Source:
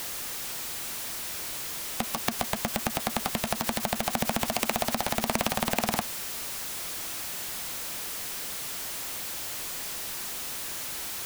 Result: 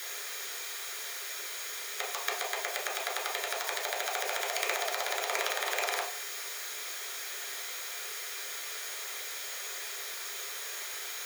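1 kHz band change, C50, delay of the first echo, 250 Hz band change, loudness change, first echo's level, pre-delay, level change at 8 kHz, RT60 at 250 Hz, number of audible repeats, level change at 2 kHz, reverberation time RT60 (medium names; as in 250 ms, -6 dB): -4.0 dB, 9.0 dB, no echo, -23.0 dB, -3.5 dB, no echo, 3 ms, -3.0 dB, 0.50 s, no echo, +1.0 dB, 0.45 s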